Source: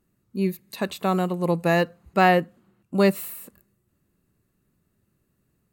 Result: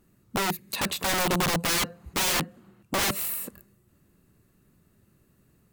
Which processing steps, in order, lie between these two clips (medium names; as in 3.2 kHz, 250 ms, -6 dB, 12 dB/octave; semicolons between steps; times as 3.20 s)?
in parallel at +2 dB: compression 5:1, threshold -28 dBFS, peak gain reduction 13.5 dB; on the sum: integer overflow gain 20 dB